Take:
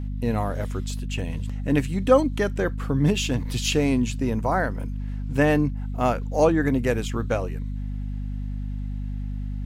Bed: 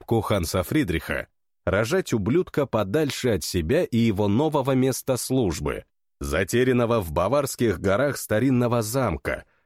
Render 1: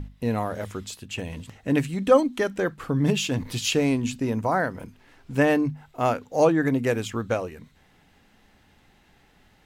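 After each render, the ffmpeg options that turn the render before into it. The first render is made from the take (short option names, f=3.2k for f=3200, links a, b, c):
-af "bandreject=f=50:t=h:w=6,bandreject=f=100:t=h:w=6,bandreject=f=150:t=h:w=6,bandreject=f=200:t=h:w=6,bandreject=f=250:t=h:w=6"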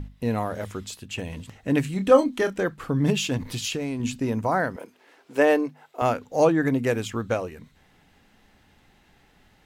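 -filter_complex "[0:a]asettb=1/sr,asplit=3[a][b][c];[a]atrim=end=1.834[d];[b]atrim=start=1.83:end=2.63,asetpts=PTS-STARTPTS,afade=t=in:d=0.004:c=qsin,afade=t=out:st=0.796:d=0.004:c=qsin,asplit=2[e][f];[f]adelay=27,volume=-8.5dB[g];[e][g]amix=inputs=2:normalize=0,atrim=end_sample=35280[h];[c]atrim=start=2.626[i];[d][h]acrossfade=d=0.004:c1=hsin:c2=qsin[j];[j][i]acrossfade=d=0.004:c1=qsin:c2=hsin,asettb=1/sr,asplit=3[k][l][m];[k]atrim=end=3.374[n];[l]atrim=start=3.37:end=4,asetpts=PTS-STARTPTS,afade=t=in:d=0.004:c=qsin,afade=t=out:st=0.626:d=0.004:c=qsin,acompressor=threshold=-25dB:ratio=5:attack=3.2:release=140:knee=1:detection=peak[o];[m]atrim=start=3.996[p];[n][o]acrossfade=d=0.004:c1=hsin:c2=qsin[q];[q][p]acrossfade=d=0.004:c1=qsin:c2=hsin,asettb=1/sr,asplit=3[r][s][t];[r]atrim=end=4.764[u];[s]atrim=start=4.76:end=6.02,asetpts=PTS-STARTPTS,afade=t=in:d=0.004:c=qsin,afade=t=out:st=1.256:d=0.004:c=qsin,highpass=f=420:t=q:w=1.5[v];[t]atrim=start=6.016[w];[u][v]acrossfade=d=0.004:c1=hsin:c2=qsin[x];[x][w]acrossfade=d=0.004:c1=qsin:c2=hsin"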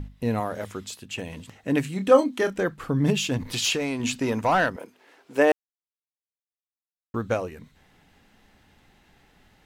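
-filter_complex "[0:a]asettb=1/sr,asplit=3[a][b][c];[a]atrim=end=0.404[d];[b]atrim=start=0.4:end=2.43,asetpts=PTS-STARTPTS,afade=t=in:d=0.004:c=qsin,afade=t=out:st=2.026:d=0.004:c=qsin,highpass=f=150:p=1[e];[c]atrim=start=2.426[f];[d][e]acrossfade=d=0.004:c1=hsin:c2=qsin[g];[g][f]acrossfade=d=0.004:c1=qsin:c2=hsin,asettb=1/sr,asplit=3[h][i][j];[h]atrim=end=3.534[k];[i]atrim=start=3.53:end=4.7,asetpts=PTS-STARTPTS,afade=t=in:d=0.004:c=qsin,afade=t=out:st=1.166:d=0.004:c=qsin,asplit=2[l][m];[m]highpass=f=720:p=1,volume=13dB,asoftclip=type=tanh:threshold=-12.5dB[n];[l][n]amix=inputs=2:normalize=0,lowpass=f=7.4k:p=1,volume=-6dB[o];[j]atrim=start=4.696[p];[k][o]acrossfade=d=0.004:c1=hsin:c2=qsin[q];[q][p]acrossfade=d=0.004:c1=qsin:c2=hsin,asplit=3[r][s][t];[r]atrim=end=5.52,asetpts=PTS-STARTPTS,afade=t=out:st=5.516:d=0.004:c=hsin[u];[s]atrim=start=5.52:end=7.14,asetpts=PTS-STARTPTS,volume=0[v];[t]atrim=start=7.14,asetpts=PTS-STARTPTS,afade=t=in:d=0.004:c=hsin[w];[u][v][w]concat=n=3:v=0:a=1"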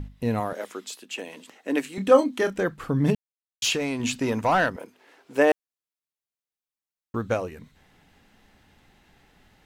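-filter_complex "[0:a]asettb=1/sr,asplit=3[a][b][c];[a]atrim=end=0.534[d];[b]atrim=start=0.53:end=1.98,asetpts=PTS-STARTPTS,afade=t=in:d=0.004:c=qsin,afade=t=out:st=1.446:d=0.004:c=qsin,highpass=f=270:w=0.5412,highpass=f=270:w=1.3066[e];[c]atrim=start=1.976[f];[d][e]acrossfade=d=0.004:c1=hsin:c2=qsin[g];[g][f]acrossfade=d=0.004:c1=qsin:c2=hsin,asplit=3[h][i][j];[h]atrim=end=3.15,asetpts=PTS-STARTPTS,afade=t=out:st=3.146:d=0.004:c=hsin[k];[i]atrim=start=3.15:end=3.62,asetpts=PTS-STARTPTS,volume=0[l];[j]atrim=start=3.62,asetpts=PTS-STARTPTS,afade=t=in:d=0.004:c=hsin[m];[k][l][m]concat=n=3:v=0:a=1"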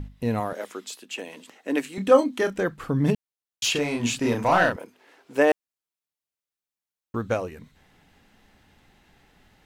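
-filter_complex "[0:a]asettb=1/sr,asplit=3[a][b][c];[a]atrim=end=3.724[d];[b]atrim=start=3.72:end=4.76,asetpts=PTS-STARTPTS,afade=t=in:d=0.004:c=qsin,afade=t=out:st=1.036:d=0.004:c=qsin,asplit=2[e][f];[f]adelay=34,volume=-2.5dB[g];[e][g]amix=inputs=2:normalize=0,atrim=end_sample=45864[h];[c]atrim=start=4.756[i];[d][h]acrossfade=d=0.004:c1=hsin:c2=qsin[j];[j][i]acrossfade=d=0.004:c1=qsin:c2=hsin"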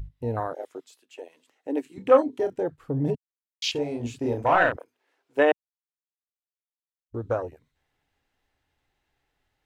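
-af "afwtdn=0.0447,equalizer=f=200:t=o:w=0.48:g=-14.5"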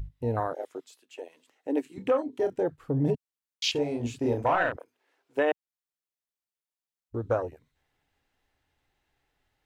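-af "alimiter=limit=-15dB:level=0:latency=1:release=338"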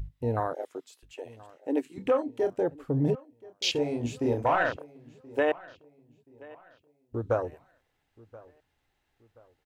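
-filter_complex "[0:a]asplit=2[a][b];[b]adelay=1028,lowpass=f=4.8k:p=1,volume=-21.5dB,asplit=2[c][d];[d]adelay=1028,lowpass=f=4.8k:p=1,volume=0.36,asplit=2[e][f];[f]adelay=1028,lowpass=f=4.8k:p=1,volume=0.36[g];[a][c][e][g]amix=inputs=4:normalize=0"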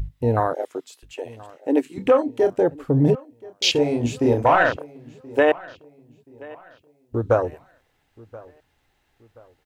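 -af "volume=8.5dB"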